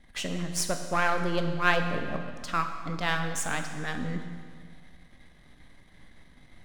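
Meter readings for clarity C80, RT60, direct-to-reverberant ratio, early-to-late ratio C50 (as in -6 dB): 8.0 dB, 1.9 s, 5.5 dB, 7.0 dB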